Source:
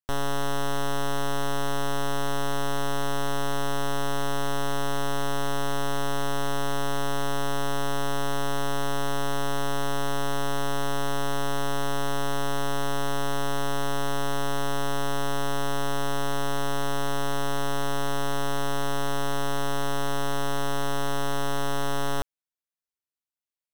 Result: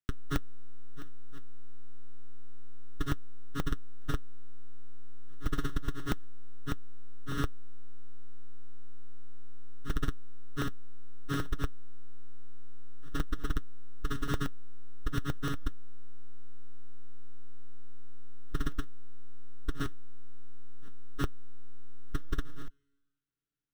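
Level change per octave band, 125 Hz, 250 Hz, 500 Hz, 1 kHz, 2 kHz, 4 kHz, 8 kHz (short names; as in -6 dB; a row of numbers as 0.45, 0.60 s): -6.5, -8.0, -18.5, -18.0, -13.0, -16.0, -18.5 dB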